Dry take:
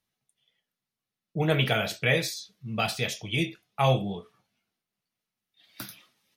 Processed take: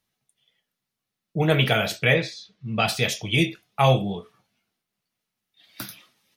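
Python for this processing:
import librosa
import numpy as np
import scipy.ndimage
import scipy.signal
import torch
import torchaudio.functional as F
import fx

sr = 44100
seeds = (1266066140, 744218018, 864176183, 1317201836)

p1 = fx.lowpass(x, sr, hz=fx.line((2.13, 2800.0), (2.86, 5400.0)), slope=12, at=(2.13, 2.86), fade=0.02)
p2 = fx.rider(p1, sr, range_db=10, speed_s=0.5)
y = p1 + F.gain(torch.from_numpy(p2), -1.5).numpy()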